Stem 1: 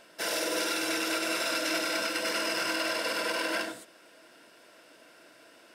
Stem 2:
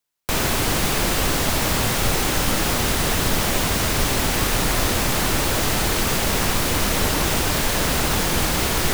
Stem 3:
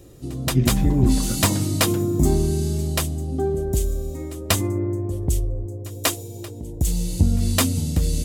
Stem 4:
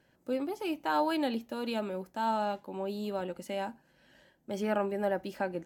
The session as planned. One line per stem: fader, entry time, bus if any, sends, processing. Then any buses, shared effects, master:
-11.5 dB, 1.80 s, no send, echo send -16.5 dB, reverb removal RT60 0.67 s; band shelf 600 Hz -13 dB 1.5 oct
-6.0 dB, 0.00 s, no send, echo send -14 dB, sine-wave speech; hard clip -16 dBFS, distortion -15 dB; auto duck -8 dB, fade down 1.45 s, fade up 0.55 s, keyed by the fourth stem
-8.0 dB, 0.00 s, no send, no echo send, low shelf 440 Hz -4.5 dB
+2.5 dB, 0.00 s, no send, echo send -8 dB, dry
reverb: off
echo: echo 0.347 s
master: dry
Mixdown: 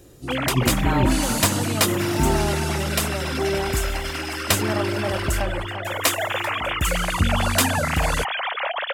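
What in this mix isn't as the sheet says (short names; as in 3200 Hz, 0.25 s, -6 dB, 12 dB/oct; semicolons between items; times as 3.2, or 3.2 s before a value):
stem 1 -11.5 dB -> 0.0 dB; stem 2: missing hard clip -16 dBFS, distortion -15 dB; stem 3 -8.0 dB -> +1.0 dB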